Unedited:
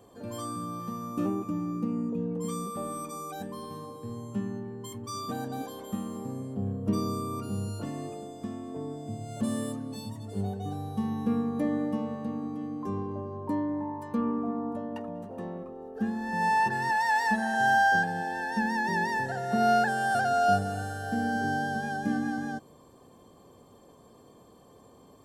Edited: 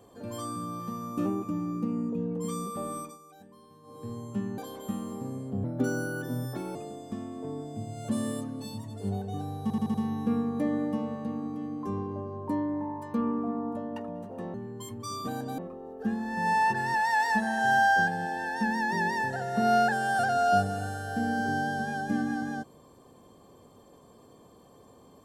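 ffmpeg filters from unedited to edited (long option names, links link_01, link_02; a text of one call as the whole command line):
ffmpeg -i in.wav -filter_complex "[0:a]asplit=12[link_01][link_02][link_03][link_04][link_05][link_06][link_07][link_08][link_09][link_10][link_11][link_12];[link_01]atrim=end=3.18,asetpts=PTS-STARTPTS,afade=type=out:start_time=2.98:duration=0.2:silence=0.177828[link_13];[link_02]atrim=start=3.18:end=3.83,asetpts=PTS-STARTPTS,volume=-15dB[link_14];[link_03]atrim=start=3.83:end=4.582,asetpts=PTS-STARTPTS,afade=type=in:duration=0.2:silence=0.177828[link_15];[link_04]atrim=start=5.618:end=6.684[link_16];[link_05]atrim=start=6.68:end=8.07,asetpts=PTS-STARTPTS,asetrate=55125,aresample=44100,atrim=end_sample=49039,asetpts=PTS-STARTPTS[link_17];[link_06]atrim=start=8.066:end=11.022[link_18];[link_07]atrim=start=10.938:end=11.022[link_19];[link_08]atrim=start=10.938:end=11.022[link_20];[link_09]atrim=start=10.938:end=11.022[link_21];[link_10]atrim=start=10.938:end=15.542[link_22];[link_11]atrim=start=4.578:end=5.622[link_23];[link_12]atrim=start=15.538[link_24];[link_13][link_14][link_15]concat=n=3:v=0:a=1[link_25];[link_25][link_16]acrossfade=duration=0.004:curve1=hsin:curve2=hsin[link_26];[link_26][link_17]acrossfade=duration=0.004:curve1=hsin:curve2=hsin[link_27];[link_27][link_18]acrossfade=duration=0.004:curve1=hsin:curve2=hsin[link_28];[link_28][link_19]acrossfade=duration=0.004:curve1=hsin:curve2=hsin[link_29];[link_29][link_20]acrossfade=duration=0.004:curve1=hsin:curve2=hsin[link_30];[link_30][link_21]acrossfade=duration=0.004:curve1=hsin:curve2=hsin[link_31];[link_31][link_22]acrossfade=duration=0.004:curve1=hsin:curve2=hsin[link_32];[link_32][link_23]acrossfade=duration=0.004:curve1=hsin:curve2=hsin[link_33];[link_33][link_24]acrossfade=duration=0.004:curve1=hsin:curve2=hsin" out.wav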